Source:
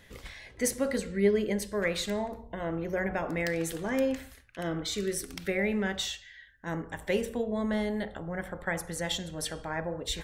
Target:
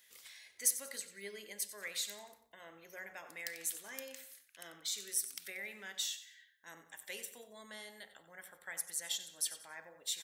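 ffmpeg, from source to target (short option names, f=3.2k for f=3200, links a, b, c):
-af "aderivative,aecho=1:1:92|184|276:0.2|0.0698|0.0244"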